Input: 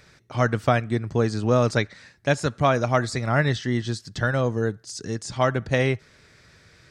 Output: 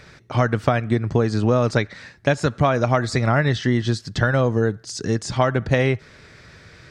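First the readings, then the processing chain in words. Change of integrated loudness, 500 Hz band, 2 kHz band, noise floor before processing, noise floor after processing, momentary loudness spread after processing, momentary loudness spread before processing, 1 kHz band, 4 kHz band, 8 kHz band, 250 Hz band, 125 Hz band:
+3.0 dB, +2.5 dB, +2.0 dB, -56 dBFS, -49 dBFS, 6 LU, 10 LU, +2.0 dB, +2.5 dB, +1.5 dB, +4.0 dB, +4.0 dB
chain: compression, threshold -23 dBFS, peak gain reduction 9 dB; treble shelf 6.4 kHz -10 dB; trim +8.5 dB

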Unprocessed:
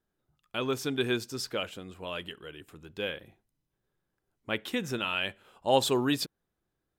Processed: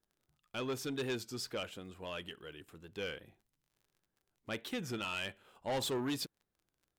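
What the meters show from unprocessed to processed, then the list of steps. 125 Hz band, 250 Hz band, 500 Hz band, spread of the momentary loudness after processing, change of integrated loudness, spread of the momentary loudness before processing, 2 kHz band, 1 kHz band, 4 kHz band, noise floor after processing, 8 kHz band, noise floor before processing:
-6.5 dB, -7.5 dB, -8.5 dB, 14 LU, -8.5 dB, 17 LU, -8.0 dB, -10.0 dB, -8.0 dB, under -85 dBFS, -6.0 dB, -84 dBFS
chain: crackle 40 per s -53 dBFS; saturation -26.5 dBFS, distortion -9 dB; warped record 33 1/3 rpm, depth 100 cents; trim -4.5 dB

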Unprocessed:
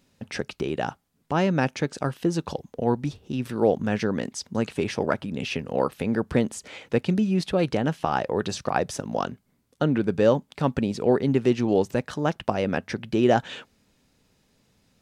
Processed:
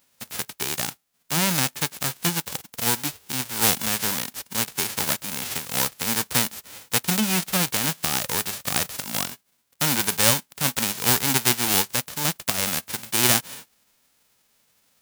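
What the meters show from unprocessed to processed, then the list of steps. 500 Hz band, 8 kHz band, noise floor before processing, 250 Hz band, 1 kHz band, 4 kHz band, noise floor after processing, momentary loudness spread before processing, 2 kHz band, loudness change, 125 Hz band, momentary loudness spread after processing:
-10.0 dB, +18.5 dB, -68 dBFS, -6.0 dB, -1.0 dB, +12.5 dB, -67 dBFS, 9 LU, +5.5 dB, +3.0 dB, -3.0 dB, 9 LU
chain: formants flattened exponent 0.1

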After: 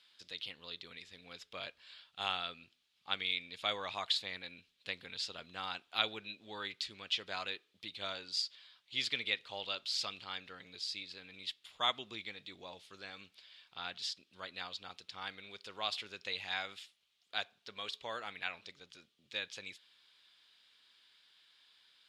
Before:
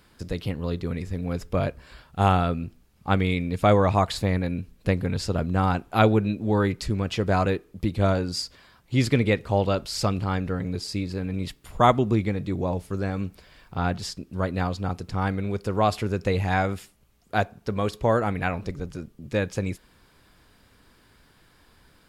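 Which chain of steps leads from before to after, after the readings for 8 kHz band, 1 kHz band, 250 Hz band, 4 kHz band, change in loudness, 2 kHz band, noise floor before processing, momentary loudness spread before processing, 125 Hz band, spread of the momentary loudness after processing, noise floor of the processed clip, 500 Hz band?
-11.0 dB, -17.5 dB, -30.5 dB, 0.0 dB, -14.0 dB, -9.0 dB, -59 dBFS, 12 LU, -36.5 dB, 17 LU, -77 dBFS, -23.0 dB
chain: band-pass filter 3.5 kHz, Q 3.1; trim +3 dB

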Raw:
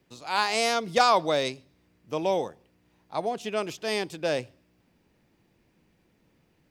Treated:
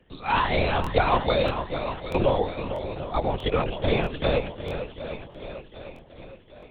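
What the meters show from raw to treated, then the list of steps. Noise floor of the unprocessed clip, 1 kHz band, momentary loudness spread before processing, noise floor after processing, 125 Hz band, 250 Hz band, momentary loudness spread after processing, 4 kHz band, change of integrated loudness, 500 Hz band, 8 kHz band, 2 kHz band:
-68 dBFS, +1.0 dB, 12 LU, -51 dBFS, +14.0 dB, +5.5 dB, 17 LU, -1.5 dB, +1.0 dB, +3.0 dB, under -20 dB, +1.0 dB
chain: drifting ripple filter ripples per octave 1.3, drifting +2.7 Hz, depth 11 dB; dynamic bell 1.9 kHz, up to -4 dB, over -38 dBFS, Q 1; compression 6:1, threshold -23 dBFS, peak gain reduction 9 dB; on a send: shuffle delay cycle 756 ms, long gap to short 1.5:1, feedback 48%, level -9.5 dB; on the sum: LPC vocoder at 8 kHz whisper; crackling interface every 0.64 s, samples 1024, repeat, from 0.82 s; trim +5.5 dB

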